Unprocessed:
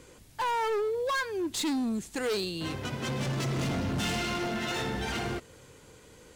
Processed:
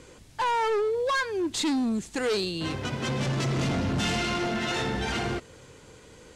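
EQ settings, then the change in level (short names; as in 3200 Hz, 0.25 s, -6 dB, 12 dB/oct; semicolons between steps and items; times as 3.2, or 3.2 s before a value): LPF 8600 Hz 12 dB/oct; +3.5 dB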